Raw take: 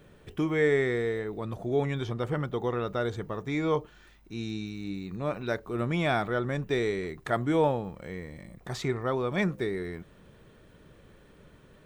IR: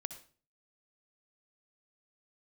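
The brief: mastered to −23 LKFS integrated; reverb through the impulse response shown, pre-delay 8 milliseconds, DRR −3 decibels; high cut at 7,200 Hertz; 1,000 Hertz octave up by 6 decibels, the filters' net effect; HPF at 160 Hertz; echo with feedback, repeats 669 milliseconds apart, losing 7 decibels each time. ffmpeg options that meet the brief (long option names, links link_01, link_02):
-filter_complex "[0:a]highpass=160,lowpass=7200,equalizer=frequency=1000:width_type=o:gain=8,aecho=1:1:669|1338|2007|2676|3345:0.447|0.201|0.0905|0.0407|0.0183,asplit=2[link_01][link_02];[1:a]atrim=start_sample=2205,adelay=8[link_03];[link_02][link_03]afir=irnorm=-1:irlink=0,volume=5dB[link_04];[link_01][link_04]amix=inputs=2:normalize=0,volume=1dB"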